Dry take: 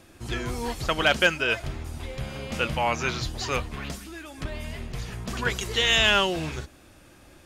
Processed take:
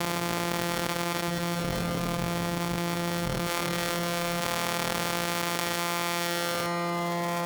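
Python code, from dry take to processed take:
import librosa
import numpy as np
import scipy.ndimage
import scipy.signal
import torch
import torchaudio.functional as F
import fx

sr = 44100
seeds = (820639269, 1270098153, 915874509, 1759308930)

y = np.r_[np.sort(x[:len(x) // 256 * 256].reshape(-1, 256), axis=1).ravel(), x[len(x) // 256 * 256:]]
y = y + 0.74 * np.pad(y, (int(6.7 * sr / 1000.0), 0))[:len(y)]
y = np.maximum(y, 0.0)
y = fx.highpass(y, sr, hz=fx.steps((0.0, 420.0), (1.28, 97.0), (3.47, 750.0)), slope=6)
y = fx.rev_freeverb(y, sr, rt60_s=3.9, hf_ratio=0.75, predelay_ms=120, drr_db=15.0)
y = fx.env_flatten(y, sr, amount_pct=100)
y = y * 10.0 ** (-7.0 / 20.0)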